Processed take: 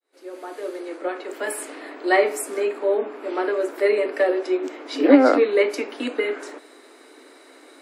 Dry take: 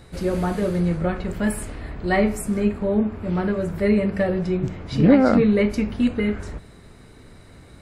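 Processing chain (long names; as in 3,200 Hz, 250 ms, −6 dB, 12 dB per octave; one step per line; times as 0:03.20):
fade in at the beginning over 1.85 s
Butterworth high-pass 270 Hz 96 dB per octave
level +3.5 dB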